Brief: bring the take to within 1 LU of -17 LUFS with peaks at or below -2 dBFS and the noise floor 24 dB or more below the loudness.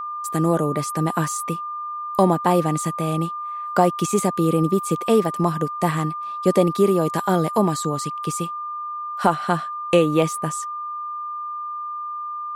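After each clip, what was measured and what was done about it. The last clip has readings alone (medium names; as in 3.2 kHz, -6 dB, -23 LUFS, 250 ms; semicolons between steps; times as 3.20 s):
steady tone 1.2 kHz; tone level -27 dBFS; loudness -22.0 LUFS; peak level -3.5 dBFS; loudness target -17.0 LUFS
-> band-stop 1.2 kHz, Q 30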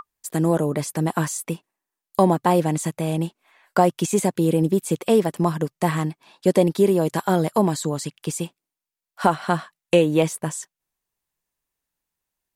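steady tone not found; loudness -22.0 LUFS; peak level -4.0 dBFS; loudness target -17.0 LUFS
-> trim +5 dB; peak limiter -2 dBFS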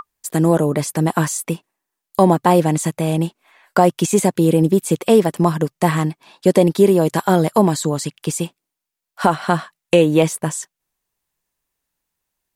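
loudness -17.5 LUFS; peak level -2.0 dBFS; noise floor -83 dBFS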